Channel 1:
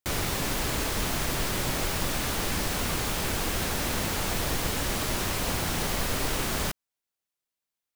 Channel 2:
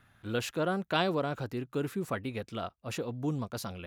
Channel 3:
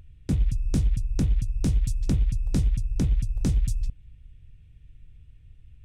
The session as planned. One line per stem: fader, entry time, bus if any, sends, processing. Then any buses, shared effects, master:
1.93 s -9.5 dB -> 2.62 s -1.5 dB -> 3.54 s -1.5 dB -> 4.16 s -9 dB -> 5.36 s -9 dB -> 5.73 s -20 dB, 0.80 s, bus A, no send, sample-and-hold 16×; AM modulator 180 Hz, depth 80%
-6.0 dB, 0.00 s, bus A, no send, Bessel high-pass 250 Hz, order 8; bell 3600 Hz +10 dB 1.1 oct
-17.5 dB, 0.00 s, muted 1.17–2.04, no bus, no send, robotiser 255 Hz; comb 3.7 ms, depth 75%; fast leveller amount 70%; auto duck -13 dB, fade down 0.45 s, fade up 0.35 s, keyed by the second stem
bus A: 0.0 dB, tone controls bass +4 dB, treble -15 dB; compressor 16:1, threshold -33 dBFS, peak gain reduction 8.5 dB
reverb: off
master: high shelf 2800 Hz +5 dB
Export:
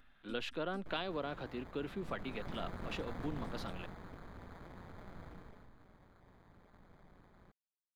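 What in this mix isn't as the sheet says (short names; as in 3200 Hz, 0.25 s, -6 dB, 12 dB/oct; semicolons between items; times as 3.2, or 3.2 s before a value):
stem 1 -9.5 dB -> -21.5 dB; stem 3: missing fast leveller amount 70%; master: missing high shelf 2800 Hz +5 dB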